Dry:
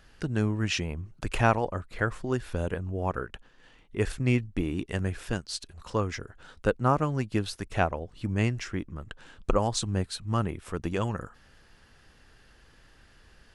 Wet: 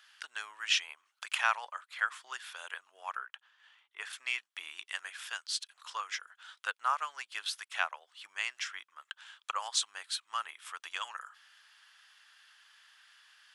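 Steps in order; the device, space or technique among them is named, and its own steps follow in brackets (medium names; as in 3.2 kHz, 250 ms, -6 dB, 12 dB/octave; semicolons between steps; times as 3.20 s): headphones lying on a table (high-pass 1.1 kHz 24 dB/octave; peaking EQ 3.3 kHz +7 dB 0.28 oct); 3.17–4.13 s: treble shelf 2.5 kHz -9 dB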